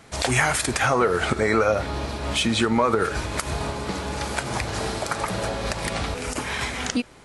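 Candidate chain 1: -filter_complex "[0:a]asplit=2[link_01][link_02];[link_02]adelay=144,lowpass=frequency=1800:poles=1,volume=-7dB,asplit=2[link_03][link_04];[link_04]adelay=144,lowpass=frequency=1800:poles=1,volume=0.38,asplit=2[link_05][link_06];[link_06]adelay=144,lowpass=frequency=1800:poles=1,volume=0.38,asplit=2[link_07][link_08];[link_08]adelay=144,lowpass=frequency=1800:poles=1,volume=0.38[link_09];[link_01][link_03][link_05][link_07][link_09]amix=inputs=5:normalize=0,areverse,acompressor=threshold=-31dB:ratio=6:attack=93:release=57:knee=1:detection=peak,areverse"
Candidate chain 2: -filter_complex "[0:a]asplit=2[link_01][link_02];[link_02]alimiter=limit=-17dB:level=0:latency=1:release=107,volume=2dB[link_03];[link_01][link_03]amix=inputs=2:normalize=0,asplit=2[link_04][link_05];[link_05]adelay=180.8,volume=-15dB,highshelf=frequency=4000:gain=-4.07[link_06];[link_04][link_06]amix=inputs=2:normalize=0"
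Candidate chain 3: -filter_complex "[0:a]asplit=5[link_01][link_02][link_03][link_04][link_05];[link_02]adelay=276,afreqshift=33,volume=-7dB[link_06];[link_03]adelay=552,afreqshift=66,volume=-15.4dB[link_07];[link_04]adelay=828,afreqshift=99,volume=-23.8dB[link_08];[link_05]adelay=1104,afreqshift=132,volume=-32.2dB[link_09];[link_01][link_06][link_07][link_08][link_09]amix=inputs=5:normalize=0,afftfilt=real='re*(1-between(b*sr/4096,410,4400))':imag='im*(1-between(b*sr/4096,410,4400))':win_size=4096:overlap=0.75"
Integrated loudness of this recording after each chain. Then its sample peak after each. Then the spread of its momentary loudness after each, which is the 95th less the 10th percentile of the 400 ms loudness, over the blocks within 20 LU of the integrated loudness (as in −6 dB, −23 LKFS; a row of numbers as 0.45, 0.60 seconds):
−27.0, −19.0, −28.0 LKFS; −8.5, −3.0, −10.5 dBFS; 3, 6, 7 LU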